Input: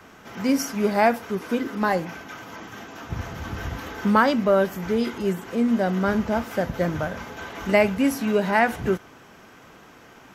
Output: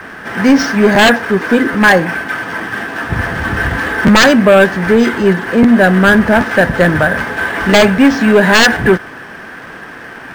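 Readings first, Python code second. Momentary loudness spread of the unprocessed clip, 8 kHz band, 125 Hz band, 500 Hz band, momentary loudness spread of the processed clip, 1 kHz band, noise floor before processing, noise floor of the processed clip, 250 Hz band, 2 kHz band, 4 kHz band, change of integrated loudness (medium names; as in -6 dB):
16 LU, +14.0 dB, +13.5 dB, +12.0 dB, 17 LU, +10.5 dB, -49 dBFS, -31 dBFS, +13.0 dB, +18.0 dB, +19.0 dB, +13.0 dB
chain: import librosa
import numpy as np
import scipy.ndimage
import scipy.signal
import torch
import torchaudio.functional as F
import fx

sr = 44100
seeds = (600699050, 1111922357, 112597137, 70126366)

y = scipy.signal.sosfilt(scipy.signal.butter(2, 7000.0, 'lowpass', fs=sr, output='sos'), x)
y = fx.peak_eq(y, sr, hz=1700.0, db=14.0, octaves=0.28)
y = fx.fold_sine(y, sr, drive_db=13, ceiling_db=-0.5)
y = fx.peak_eq(y, sr, hz=71.0, db=-3.5, octaves=1.8)
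y = fx.buffer_crackle(y, sr, first_s=0.94, period_s=0.78, block=512, kind='repeat')
y = np.interp(np.arange(len(y)), np.arange(len(y))[::4], y[::4])
y = F.gain(torch.from_numpy(y), -1.5).numpy()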